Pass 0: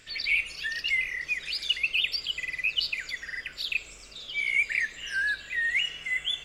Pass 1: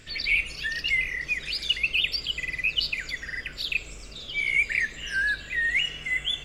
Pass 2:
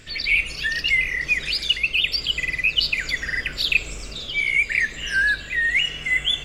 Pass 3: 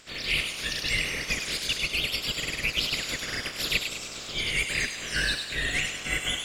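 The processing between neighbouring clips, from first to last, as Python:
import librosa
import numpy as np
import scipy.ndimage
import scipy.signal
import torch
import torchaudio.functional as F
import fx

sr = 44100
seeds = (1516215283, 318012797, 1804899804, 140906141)

y1 = fx.low_shelf(x, sr, hz=440.0, db=10.5)
y1 = F.gain(torch.from_numpy(y1), 1.5).numpy()
y2 = fx.rider(y1, sr, range_db=3, speed_s=0.5)
y2 = F.gain(torch.from_numpy(y2), 5.5).numpy()
y3 = fx.spec_clip(y2, sr, under_db=23)
y3 = fx.echo_wet_highpass(y3, sr, ms=101, feedback_pct=49, hz=2900.0, wet_db=-3.5)
y3 = F.gain(torch.from_numpy(y3), -7.0).numpy()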